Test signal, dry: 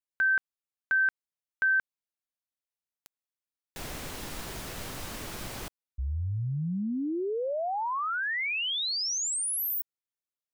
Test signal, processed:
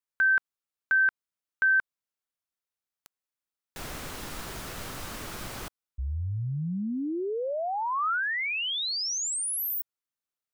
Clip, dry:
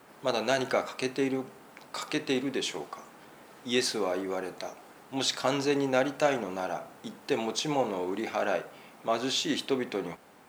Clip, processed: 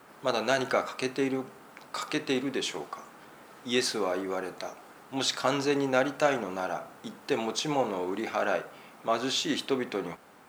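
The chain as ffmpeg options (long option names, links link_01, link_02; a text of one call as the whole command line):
ffmpeg -i in.wav -af "equalizer=frequency=1300:width_type=o:width=0.6:gain=4" out.wav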